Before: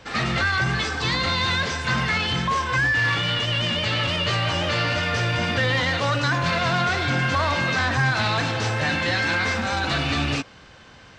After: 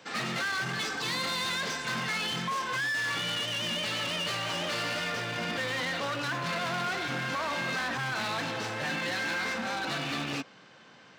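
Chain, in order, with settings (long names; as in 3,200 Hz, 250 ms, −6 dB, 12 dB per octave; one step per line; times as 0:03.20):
high-shelf EQ 6,300 Hz +6 dB, from 0:05.12 −3.5 dB
hard clipping −22.5 dBFS, distortion −10 dB
high-pass filter 150 Hz 24 dB per octave
level −6 dB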